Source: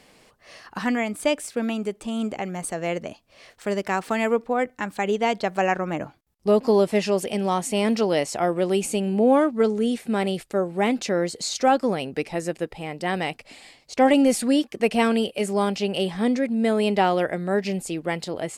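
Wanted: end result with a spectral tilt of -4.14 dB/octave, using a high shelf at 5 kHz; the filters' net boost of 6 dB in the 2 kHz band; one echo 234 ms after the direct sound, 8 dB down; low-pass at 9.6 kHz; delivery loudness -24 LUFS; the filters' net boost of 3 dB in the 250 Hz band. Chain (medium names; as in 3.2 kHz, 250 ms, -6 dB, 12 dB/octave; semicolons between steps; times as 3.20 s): low-pass 9.6 kHz; peaking EQ 250 Hz +3.5 dB; peaking EQ 2 kHz +8 dB; treble shelf 5 kHz -5.5 dB; delay 234 ms -8 dB; trim -3 dB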